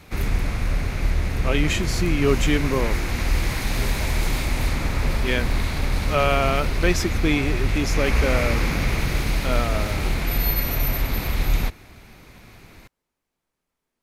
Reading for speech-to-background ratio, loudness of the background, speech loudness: 0.0 dB, -25.0 LUFS, -25.0 LUFS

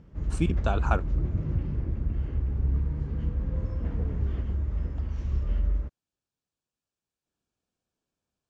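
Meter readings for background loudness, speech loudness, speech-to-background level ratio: -30.5 LUFS, -31.0 LUFS, -0.5 dB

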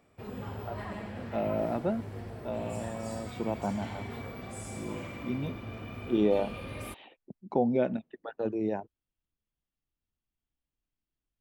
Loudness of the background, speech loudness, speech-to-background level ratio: -41.0 LUFS, -33.0 LUFS, 8.0 dB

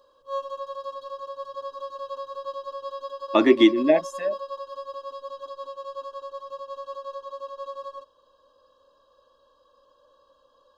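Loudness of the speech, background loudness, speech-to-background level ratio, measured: -20.0 LUFS, -36.0 LUFS, 16.0 dB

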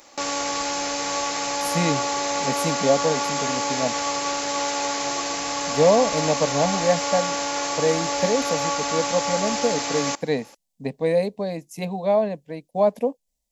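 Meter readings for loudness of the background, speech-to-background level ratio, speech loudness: -24.5 LUFS, 0.0 dB, -24.5 LUFS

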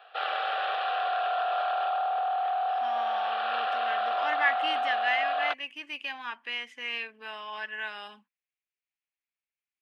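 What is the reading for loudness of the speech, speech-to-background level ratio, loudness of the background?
-33.0 LUFS, -4.0 dB, -29.0 LUFS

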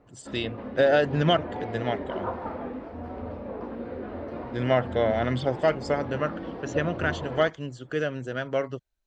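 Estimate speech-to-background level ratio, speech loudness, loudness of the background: 9.0 dB, -27.0 LUFS, -36.0 LUFS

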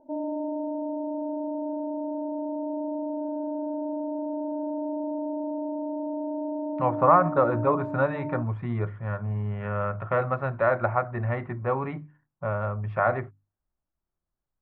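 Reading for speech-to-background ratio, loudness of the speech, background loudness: 5.5 dB, -26.5 LUFS, -32.0 LUFS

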